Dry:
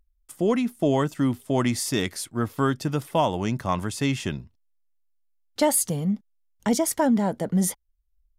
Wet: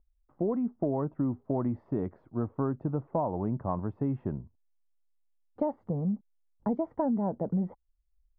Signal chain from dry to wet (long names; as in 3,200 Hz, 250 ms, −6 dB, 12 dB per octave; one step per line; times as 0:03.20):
low-pass filter 1,000 Hz 24 dB per octave
downward compressor, threshold −22 dBFS, peak gain reduction 6 dB
level −3 dB